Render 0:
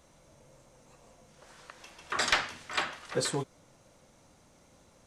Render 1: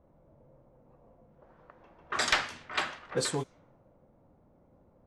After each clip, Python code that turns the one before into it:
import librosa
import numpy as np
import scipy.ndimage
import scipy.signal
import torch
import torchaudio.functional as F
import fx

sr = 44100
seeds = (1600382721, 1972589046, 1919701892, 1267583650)

y = fx.env_lowpass(x, sr, base_hz=680.0, full_db=-28.0)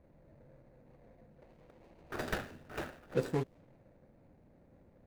y = scipy.ndimage.median_filter(x, 41, mode='constant')
y = y * 10.0 ** (1.0 / 20.0)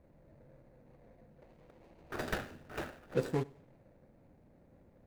y = fx.echo_feedback(x, sr, ms=95, feedback_pct=35, wet_db=-23.5)